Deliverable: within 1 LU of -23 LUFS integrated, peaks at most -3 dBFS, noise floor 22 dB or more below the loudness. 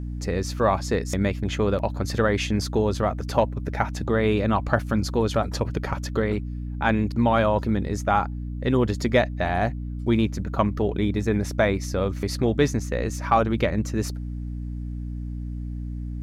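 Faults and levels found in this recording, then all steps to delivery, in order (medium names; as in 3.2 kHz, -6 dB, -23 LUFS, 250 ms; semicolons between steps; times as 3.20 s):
hum 60 Hz; highest harmonic 300 Hz; hum level -28 dBFS; loudness -25.0 LUFS; peak level -6.0 dBFS; loudness target -23.0 LUFS
-> de-hum 60 Hz, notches 5; trim +2 dB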